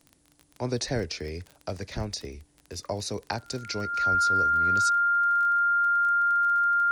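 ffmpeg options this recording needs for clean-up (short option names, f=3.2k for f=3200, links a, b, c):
-af "adeclick=t=4,bandreject=f=1.4k:w=30,agate=range=-21dB:threshold=-54dB"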